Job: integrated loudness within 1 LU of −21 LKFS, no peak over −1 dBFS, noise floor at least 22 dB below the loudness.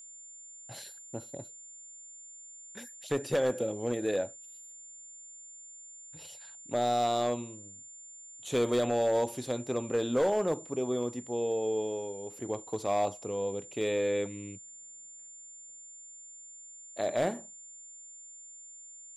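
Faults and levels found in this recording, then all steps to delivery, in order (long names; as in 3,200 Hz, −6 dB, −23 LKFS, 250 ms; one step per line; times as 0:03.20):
share of clipped samples 0.7%; peaks flattened at −21.5 dBFS; interfering tone 7,200 Hz; level of the tone −47 dBFS; integrated loudness −31.5 LKFS; sample peak −21.5 dBFS; target loudness −21.0 LKFS
→ clipped peaks rebuilt −21.5 dBFS
notch filter 7,200 Hz, Q 30
level +10.5 dB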